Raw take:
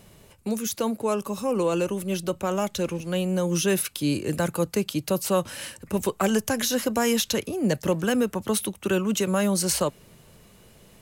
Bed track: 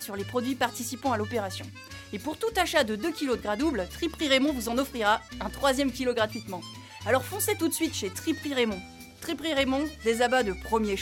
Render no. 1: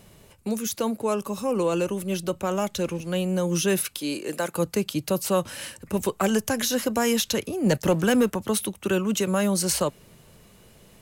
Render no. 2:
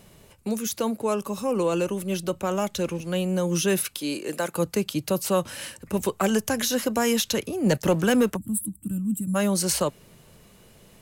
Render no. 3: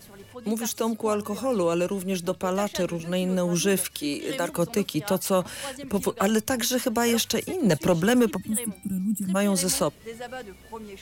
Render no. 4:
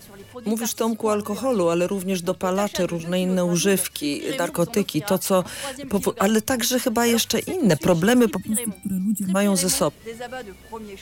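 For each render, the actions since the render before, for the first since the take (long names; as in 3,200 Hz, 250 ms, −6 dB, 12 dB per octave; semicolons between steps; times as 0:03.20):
0:03.99–0:04.55: high-pass filter 340 Hz; 0:07.66–0:08.36: leveller curve on the samples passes 1
0:08.37–0:09.35: gain on a spectral selection 320–7,300 Hz −28 dB; mains-hum notches 50/100 Hz
mix in bed track −13 dB
level +3.5 dB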